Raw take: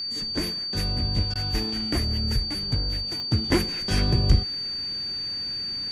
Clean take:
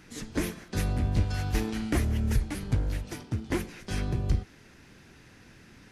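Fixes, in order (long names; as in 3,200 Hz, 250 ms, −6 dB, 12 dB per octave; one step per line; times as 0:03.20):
click removal
notch filter 4,600 Hz, Q 30
repair the gap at 0:01.34, 13 ms
level correction −7.5 dB, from 0:03.31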